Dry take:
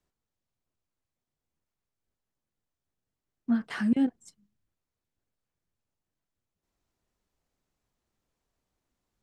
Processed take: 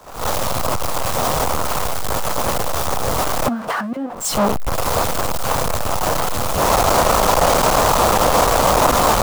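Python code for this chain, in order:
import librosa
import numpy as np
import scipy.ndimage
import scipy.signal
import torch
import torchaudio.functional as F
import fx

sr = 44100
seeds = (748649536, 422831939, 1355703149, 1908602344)

y = x + 0.5 * 10.0 ** (-32.5 / 20.0) * np.sign(x)
y = fx.recorder_agc(y, sr, target_db=-19.5, rise_db_per_s=77.0, max_gain_db=30)
y = fx.band_shelf(y, sr, hz=800.0, db=11.5, octaves=1.7)
y = fx.band_widen(y, sr, depth_pct=70)
y = y * 10.0 ** (1.5 / 20.0)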